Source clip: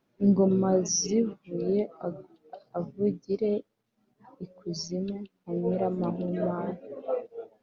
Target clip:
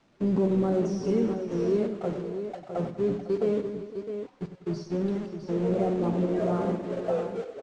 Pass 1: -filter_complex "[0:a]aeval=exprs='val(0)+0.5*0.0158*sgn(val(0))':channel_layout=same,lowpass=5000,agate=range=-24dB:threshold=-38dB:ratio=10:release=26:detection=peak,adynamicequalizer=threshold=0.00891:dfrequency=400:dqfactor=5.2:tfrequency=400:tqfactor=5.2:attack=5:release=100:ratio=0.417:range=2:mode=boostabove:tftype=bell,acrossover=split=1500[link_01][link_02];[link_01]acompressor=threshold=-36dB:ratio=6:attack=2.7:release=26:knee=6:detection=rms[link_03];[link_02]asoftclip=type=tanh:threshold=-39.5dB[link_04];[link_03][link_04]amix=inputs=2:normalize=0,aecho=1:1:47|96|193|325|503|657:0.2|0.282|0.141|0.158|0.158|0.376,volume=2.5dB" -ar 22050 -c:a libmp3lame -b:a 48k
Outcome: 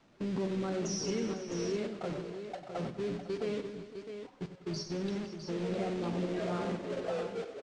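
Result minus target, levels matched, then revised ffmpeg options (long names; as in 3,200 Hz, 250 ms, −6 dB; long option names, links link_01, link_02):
downward compressor: peak gain reduction +10 dB; soft clipping: distortion −6 dB
-filter_complex "[0:a]aeval=exprs='val(0)+0.5*0.0158*sgn(val(0))':channel_layout=same,lowpass=5000,agate=range=-24dB:threshold=-38dB:ratio=10:release=26:detection=peak,adynamicequalizer=threshold=0.00891:dfrequency=400:dqfactor=5.2:tfrequency=400:tqfactor=5.2:attack=5:release=100:ratio=0.417:range=2:mode=boostabove:tftype=bell,acrossover=split=1500[link_01][link_02];[link_01]acompressor=threshold=-24dB:ratio=6:attack=2.7:release=26:knee=6:detection=rms[link_03];[link_02]asoftclip=type=tanh:threshold=-51.5dB[link_04];[link_03][link_04]amix=inputs=2:normalize=0,aecho=1:1:47|96|193|325|503|657:0.2|0.282|0.141|0.158|0.158|0.376,volume=2.5dB" -ar 22050 -c:a libmp3lame -b:a 48k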